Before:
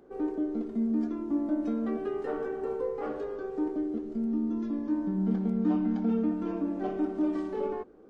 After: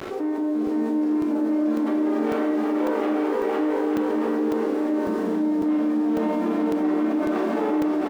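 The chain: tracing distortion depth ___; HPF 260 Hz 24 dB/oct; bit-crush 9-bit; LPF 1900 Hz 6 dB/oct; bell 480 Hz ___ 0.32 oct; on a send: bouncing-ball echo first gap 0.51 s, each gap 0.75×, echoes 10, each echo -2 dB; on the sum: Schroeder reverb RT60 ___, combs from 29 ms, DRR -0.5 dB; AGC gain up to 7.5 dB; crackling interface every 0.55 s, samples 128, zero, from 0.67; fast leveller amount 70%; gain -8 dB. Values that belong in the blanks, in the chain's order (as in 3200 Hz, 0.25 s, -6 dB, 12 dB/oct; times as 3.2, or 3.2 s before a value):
0.31 ms, -5 dB, 0.56 s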